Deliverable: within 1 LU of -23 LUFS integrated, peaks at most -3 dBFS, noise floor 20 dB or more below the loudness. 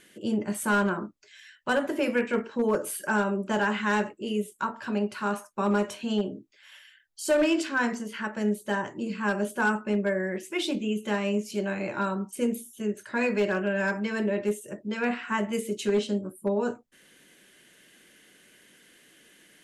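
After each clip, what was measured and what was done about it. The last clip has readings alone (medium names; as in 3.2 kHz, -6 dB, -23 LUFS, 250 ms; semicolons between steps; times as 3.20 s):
clipped samples 0.4%; clipping level -17.5 dBFS; loudness -28.5 LUFS; peak level -17.5 dBFS; loudness target -23.0 LUFS
-> clip repair -17.5 dBFS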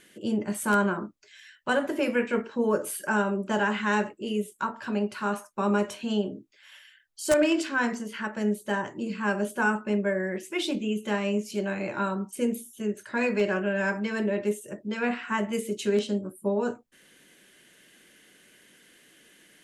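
clipped samples 0.0%; loudness -28.0 LUFS; peak level -8.5 dBFS; loudness target -23.0 LUFS
-> trim +5 dB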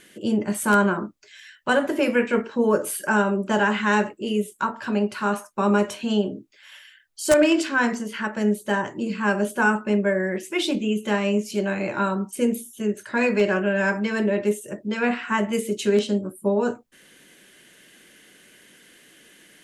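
loudness -23.0 LUFS; peak level -3.5 dBFS; noise floor -54 dBFS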